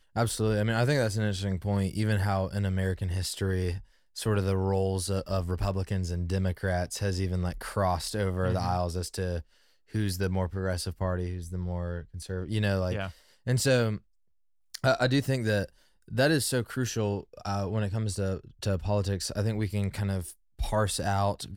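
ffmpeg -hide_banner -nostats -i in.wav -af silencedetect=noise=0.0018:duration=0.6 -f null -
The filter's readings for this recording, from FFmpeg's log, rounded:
silence_start: 14.01
silence_end: 14.74 | silence_duration: 0.73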